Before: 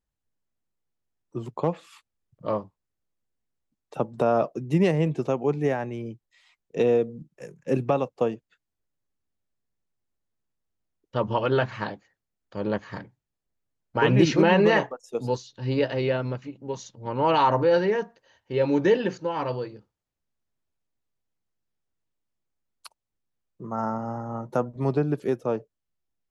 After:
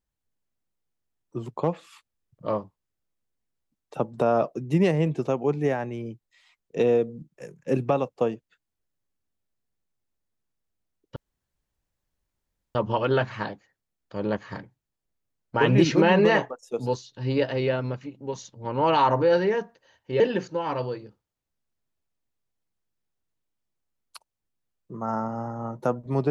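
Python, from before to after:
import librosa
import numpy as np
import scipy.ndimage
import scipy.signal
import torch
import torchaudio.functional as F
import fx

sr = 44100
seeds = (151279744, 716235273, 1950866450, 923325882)

y = fx.edit(x, sr, fx.insert_room_tone(at_s=11.16, length_s=1.59),
    fx.cut(start_s=18.61, length_s=0.29), tone=tone)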